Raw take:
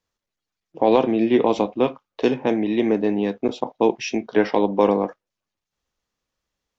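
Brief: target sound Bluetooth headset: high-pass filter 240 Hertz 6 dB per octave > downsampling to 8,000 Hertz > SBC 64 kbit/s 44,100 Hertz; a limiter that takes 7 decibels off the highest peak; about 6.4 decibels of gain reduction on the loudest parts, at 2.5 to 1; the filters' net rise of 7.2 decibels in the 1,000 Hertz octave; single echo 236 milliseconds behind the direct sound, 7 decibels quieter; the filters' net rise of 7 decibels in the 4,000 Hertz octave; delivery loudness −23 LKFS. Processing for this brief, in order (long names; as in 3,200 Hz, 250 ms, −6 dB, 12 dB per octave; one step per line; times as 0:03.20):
parametric band 1,000 Hz +9 dB
parametric band 4,000 Hz +8.5 dB
downward compressor 2.5 to 1, threshold −18 dBFS
brickwall limiter −11.5 dBFS
high-pass filter 240 Hz 6 dB per octave
single-tap delay 236 ms −7 dB
downsampling to 8,000 Hz
level +2.5 dB
SBC 64 kbit/s 44,100 Hz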